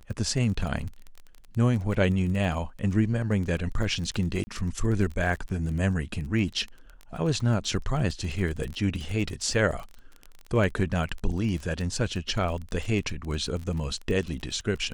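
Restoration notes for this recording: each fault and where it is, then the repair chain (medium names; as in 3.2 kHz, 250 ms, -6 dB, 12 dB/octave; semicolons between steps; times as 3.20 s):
crackle 21 per s -32 dBFS
4.44–4.47 s: dropout 30 ms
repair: de-click; interpolate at 4.44 s, 30 ms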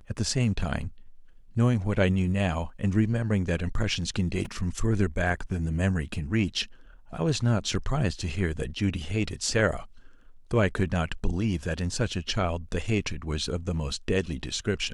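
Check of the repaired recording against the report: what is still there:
nothing left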